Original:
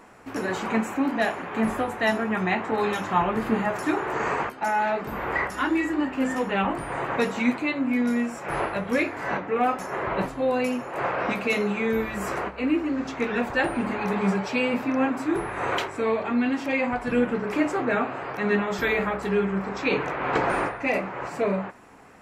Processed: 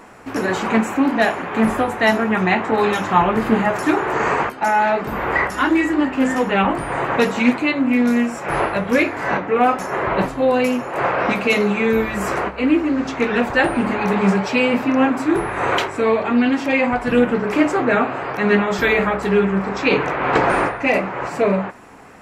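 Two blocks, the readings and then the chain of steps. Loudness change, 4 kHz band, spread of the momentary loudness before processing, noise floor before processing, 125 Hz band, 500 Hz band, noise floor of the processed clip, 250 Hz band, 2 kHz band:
+7.5 dB, +8.0 dB, 4 LU, -38 dBFS, +7.5 dB, +7.5 dB, -31 dBFS, +7.5 dB, +7.5 dB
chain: Doppler distortion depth 0.13 ms; gain +7.5 dB

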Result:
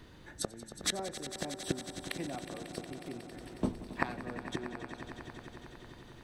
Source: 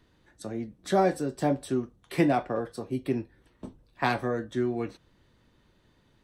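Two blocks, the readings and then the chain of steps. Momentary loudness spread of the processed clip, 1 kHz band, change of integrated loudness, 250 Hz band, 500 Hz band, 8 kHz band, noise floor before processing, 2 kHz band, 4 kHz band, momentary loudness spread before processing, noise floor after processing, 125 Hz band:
14 LU, -12.0 dB, -10.0 dB, -10.5 dB, -13.0 dB, +6.0 dB, -66 dBFS, -5.5 dB, +3.0 dB, 20 LU, -54 dBFS, -9.5 dB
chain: flipped gate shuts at -28 dBFS, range -27 dB; on a send: swelling echo 91 ms, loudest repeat 5, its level -13.5 dB; on the sum: gain +9.5 dB

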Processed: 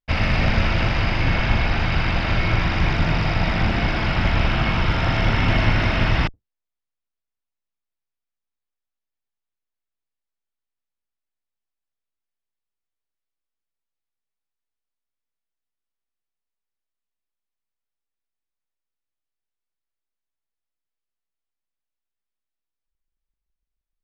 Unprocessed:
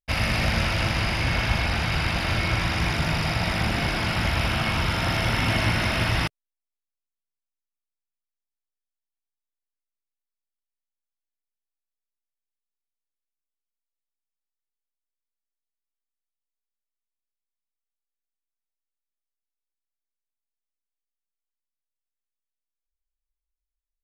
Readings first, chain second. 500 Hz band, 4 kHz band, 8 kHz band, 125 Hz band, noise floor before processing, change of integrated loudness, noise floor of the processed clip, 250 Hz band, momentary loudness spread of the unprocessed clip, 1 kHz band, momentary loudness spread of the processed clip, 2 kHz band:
+3.5 dB, -0.5 dB, n/a, +4.5 dB, under -85 dBFS, +3.0 dB, -85 dBFS, +4.0 dB, 2 LU, +2.5 dB, 2 LU, +2.0 dB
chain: octaver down 2 oct, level 0 dB; air absorption 160 m; gain +3.5 dB

